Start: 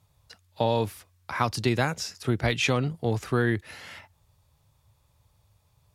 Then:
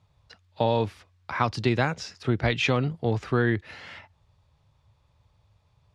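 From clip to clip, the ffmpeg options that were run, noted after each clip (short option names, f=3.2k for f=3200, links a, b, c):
-af "lowpass=4.3k,volume=1dB"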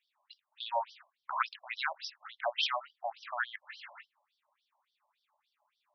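-af "afftfilt=real='re*between(b*sr/1024,770*pow(4300/770,0.5+0.5*sin(2*PI*3.5*pts/sr))/1.41,770*pow(4300/770,0.5+0.5*sin(2*PI*3.5*pts/sr))*1.41)':imag='im*between(b*sr/1024,770*pow(4300/770,0.5+0.5*sin(2*PI*3.5*pts/sr))/1.41,770*pow(4300/770,0.5+0.5*sin(2*PI*3.5*pts/sr))*1.41)':win_size=1024:overlap=0.75"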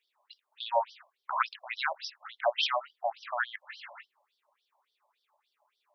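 -af "highpass=f=410:t=q:w=4.4,volume=2dB"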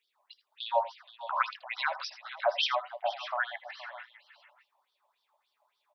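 -af "aecho=1:1:78|82|472|606|614:0.126|0.126|0.168|0.141|0.106"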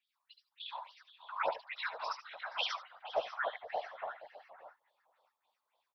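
-filter_complex "[0:a]afftfilt=real='hypot(re,im)*cos(2*PI*random(0))':imag='hypot(re,im)*sin(2*PI*random(1))':win_size=512:overlap=0.75,acrossover=split=1100|4800[a][b][c];[c]adelay=70[d];[a]adelay=700[e];[e][b][d]amix=inputs=3:normalize=0,volume=1.5dB"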